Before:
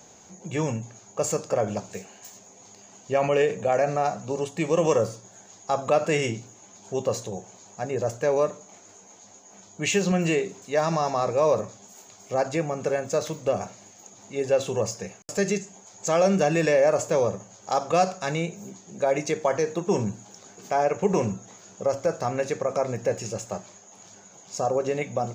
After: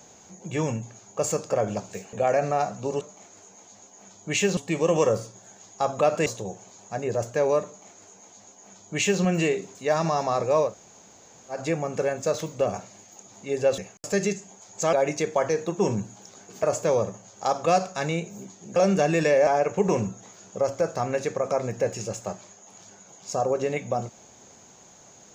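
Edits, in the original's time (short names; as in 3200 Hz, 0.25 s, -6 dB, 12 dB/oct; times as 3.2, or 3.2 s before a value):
2.13–3.58 cut
6.15–7.13 cut
8.53–10.09 copy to 4.46
11.54–12.43 room tone, crossfade 0.16 s
14.65–15.03 cut
16.18–16.89 swap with 19.02–20.72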